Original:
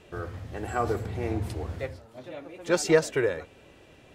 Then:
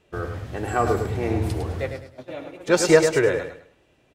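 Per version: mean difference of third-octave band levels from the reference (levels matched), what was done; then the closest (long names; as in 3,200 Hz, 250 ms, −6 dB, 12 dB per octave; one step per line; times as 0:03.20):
3.5 dB: noise gate −42 dBFS, range −14 dB
repeating echo 104 ms, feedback 29%, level −7 dB
level +5.5 dB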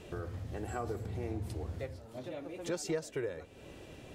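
5.5 dB: parametric band 1,600 Hz −5.5 dB 2.6 octaves
downward compressor 2.5 to 1, threshold −46 dBFS, peak gain reduction 19 dB
level +5 dB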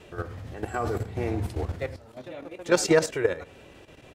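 2.0 dB: on a send: single-tap delay 92 ms −20.5 dB
on the sum: output level in coarse steps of 11 dB
level +5.5 dB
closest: third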